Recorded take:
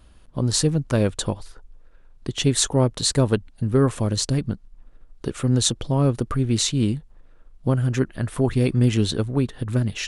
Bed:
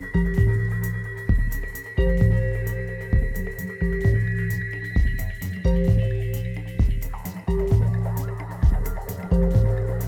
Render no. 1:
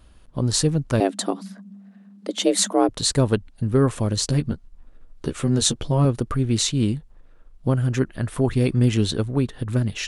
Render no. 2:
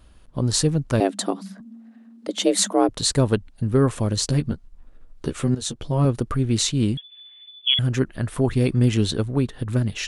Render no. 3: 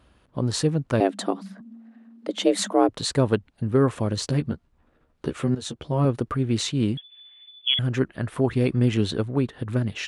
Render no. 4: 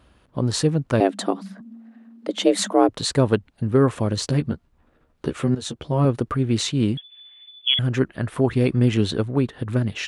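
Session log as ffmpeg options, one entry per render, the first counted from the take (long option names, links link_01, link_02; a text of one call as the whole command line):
ffmpeg -i in.wav -filter_complex "[0:a]asettb=1/sr,asplit=3[link_01][link_02][link_03];[link_01]atrim=end=1.004[link_04];[link_02]atrim=start=1:end=2.89,asetpts=PTS-STARTPTS,afade=type=in:duration=0.004:curve=qsin,afade=type=out:start_time=1.886:duration=0.004:curve=qsin,afreqshift=180[link_05];[link_03]atrim=start=2.886[link_06];[link_04][link_05]acrossfade=duration=0.004:curve1=hsin:curve2=qsin[link_07];[link_07][link_06]acrossfade=duration=0.004:curve1=qsin:curve2=hsin,asettb=1/sr,asplit=3[link_08][link_09][link_10];[link_08]atrim=end=4.224[link_11];[link_09]atrim=start=4.22:end=6.05,asetpts=PTS-STARTPTS,afade=type=in:duration=0.004:curve=qsin,afade=type=out:start_time=1.826:duration=0.004:curve=qsin,asplit=2[link_12][link_13];[link_13]adelay=13,volume=-5.5dB[link_14];[link_12][link_14]amix=inputs=2:normalize=0,atrim=end_sample=80703[link_15];[link_10]atrim=start=6.046[link_16];[link_11][link_15]acrossfade=duration=0.004:curve1=hsin:curve2=qsin[link_17];[link_17][link_16]acrossfade=duration=0.004:curve1=qsin:curve2=hsin" out.wav
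ffmpeg -i in.wav -filter_complex "[0:a]asettb=1/sr,asplit=3[link_01][link_02][link_03];[link_01]atrim=end=1.604[link_04];[link_02]atrim=start=1.6:end=2.28,asetpts=PTS-STARTPTS,afade=type=in:duration=0.004:curve=qsin,afade=type=out:start_time=0.676:duration=0.004:curve=qsin,afreqshift=30[link_05];[link_03]atrim=start=2.276[link_06];[link_04][link_05]acrossfade=duration=0.004:curve1=hsin:curve2=qsin[link_07];[link_07][link_06]acrossfade=duration=0.004:curve1=qsin:curve2=hsin,asettb=1/sr,asplit=3[link_08][link_09][link_10];[link_08]atrim=end=6.974[link_11];[link_09]atrim=start=6.97:end=7.79,asetpts=PTS-STARTPTS,afade=type=in:duration=0.004:curve=qsin,afade=type=out:start_time=0.816:duration=0.004:curve=qsin,lowpass=frequency=3000:width_type=q:width=0.5098,lowpass=frequency=3000:width_type=q:width=0.6013,lowpass=frequency=3000:width_type=q:width=0.9,lowpass=frequency=3000:width_type=q:width=2.563,afreqshift=-3500[link_12];[link_10]atrim=start=7.786[link_13];[link_11][link_12]acrossfade=duration=0.004:curve1=hsin:curve2=qsin[link_14];[link_14][link_13]acrossfade=duration=0.004:curve1=qsin:curve2=hsin,asplit=2[link_15][link_16];[link_15]atrim=end=5.55,asetpts=PTS-STARTPTS,afade=type=out:start_time=5.546:duration=0.004:curve=hsin:silence=0.199526[link_17];[link_16]atrim=start=5.55,asetpts=PTS-STARTPTS,afade=type=in:duration=0.54:silence=0.199526[link_18];[link_17][link_18]concat=n=2:v=0:a=1" out.wav
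ffmpeg -i in.wav -af "highpass=69,bass=frequency=250:gain=-3,treble=frequency=4000:gain=-9" out.wav
ffmpeg -i in.wav -af "volume=2.5dB" out.wav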